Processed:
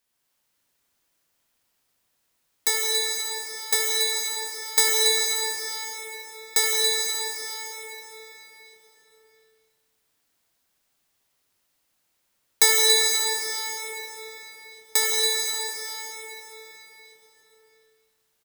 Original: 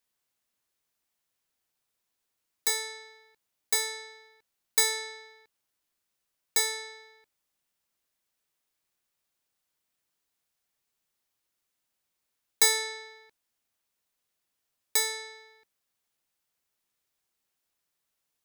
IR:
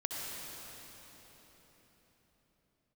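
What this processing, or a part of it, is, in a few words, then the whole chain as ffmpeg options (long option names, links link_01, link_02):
cave: -filter_complex "[0:a]aecho=1:1:281:0.335[link_01];[1:a]atrim=start_sample=2205[link_02];[link_01][link_02]afir=irnorm=-1:irlink=0,volume=6dB"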